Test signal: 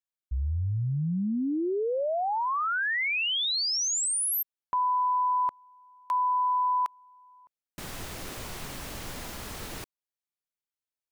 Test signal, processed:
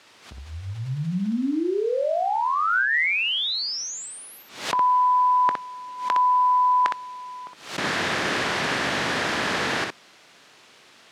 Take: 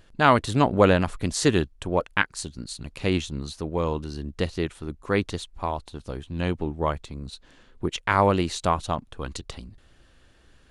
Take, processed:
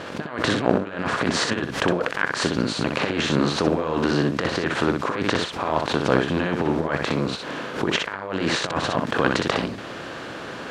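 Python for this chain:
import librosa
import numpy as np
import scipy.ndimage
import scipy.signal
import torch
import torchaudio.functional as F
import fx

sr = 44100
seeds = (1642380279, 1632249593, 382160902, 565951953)

p1 = fx.bin_compress(x, sr, power=0.6)
p2 = fx.quant_dither(p1, sr, seeds[0], bits=6, dither='triangular')
p3 = p1 + F.gain(torch.from_numpy(p2), -12.0).numpy()
p4 = fx.dynamic_eq(p3, sr, hz=1700.0, q=3.4, threshold_db=-40.0, ratio=4.0, max_db=6)
p5 = fx.over_compress(p4, sr, threshold_db=-21.0, ratio=-0.5)
p6 = fx.bandpass_edges(p5, sr, low_hz=160.0, high_hz=4200.0)
p7 = p6 + fx.room_early_taps(p6, sr, ms=(22, 62), db=(-18.0, -4.5), dry=0)
y = fx.pre_swell(p7, sr, db_per_s=110.0)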